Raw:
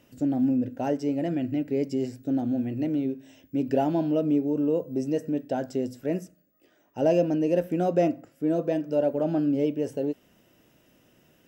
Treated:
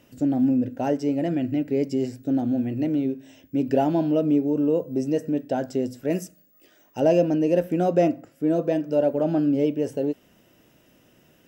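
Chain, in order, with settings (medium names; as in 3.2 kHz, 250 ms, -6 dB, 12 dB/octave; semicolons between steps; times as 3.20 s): 6.10–7.00 s: treble shelf 2.6 kHz +9.5 dB; trim +3 dB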